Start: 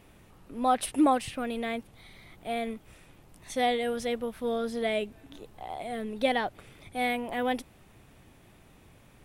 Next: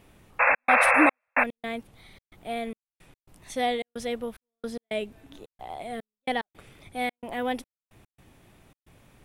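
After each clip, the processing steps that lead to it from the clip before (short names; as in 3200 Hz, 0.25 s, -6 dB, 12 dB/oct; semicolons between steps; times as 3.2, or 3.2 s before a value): painted sound noise, 0.39–1.44, 470–2700 Hz -20 dBFS; step gate "xxxx.xxx..x." 110 bpm -60 dB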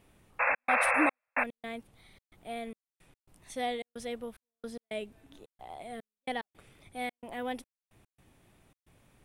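bell 9100 Hz +4 dB 0.32 oct; gain -7 dB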